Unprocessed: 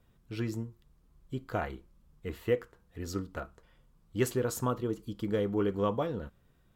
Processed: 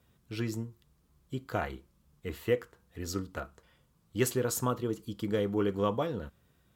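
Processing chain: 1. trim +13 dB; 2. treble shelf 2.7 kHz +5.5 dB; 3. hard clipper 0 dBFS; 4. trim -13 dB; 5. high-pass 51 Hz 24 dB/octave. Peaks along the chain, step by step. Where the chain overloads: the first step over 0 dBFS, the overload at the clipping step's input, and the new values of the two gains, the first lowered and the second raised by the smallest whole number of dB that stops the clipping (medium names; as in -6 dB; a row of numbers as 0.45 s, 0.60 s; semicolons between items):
-3.0 dBFS, -2.5 dBFS, -2.5 dBFS, -15.5 dBFS, -14.5 dBFS; nothing clips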